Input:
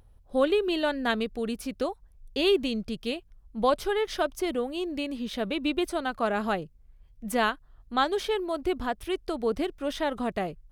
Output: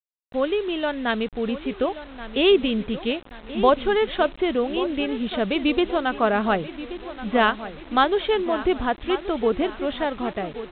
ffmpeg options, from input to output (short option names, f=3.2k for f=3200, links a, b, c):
-filter_complex "[0:a]dynaudnorm=f=350:g=7:m=6.5dB,asplit=2[a][b];[b]adelay=1129,lowpass=f=2.9k:p=1,volume=-13dB,asplit=2[c][d];[d]adelay=1129,lowpass=f=2.9k:p=1,volume=0.48,asplit=2[e][f];[f]adelay=1129,lowpass=f=2.9k:p=1,volume=0.48,asplit=2[g][h];[h]adelay=1129,lowpass=f=2.9k:p=1,volume=0.48,asplit=2[i][j];[j]adelay=1129,lowpass=f=2.9k:p=1,volume=0.48[k];[a][c][e][g][i][k]amix=inputs=6:normalize=0,aresample=8000,acrusher=bits=6:mix=0:aa=0.000001,aresample=44100"